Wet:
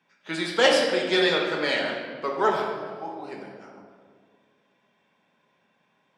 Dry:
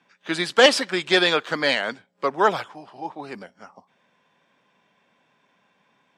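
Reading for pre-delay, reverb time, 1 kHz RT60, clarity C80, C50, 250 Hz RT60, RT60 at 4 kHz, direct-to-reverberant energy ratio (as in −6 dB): 5 ms, 1.9 s, 1.6 s, 4.5 dB, 2.5 dB, 2.3 s, 1.1 s, −1.0 dB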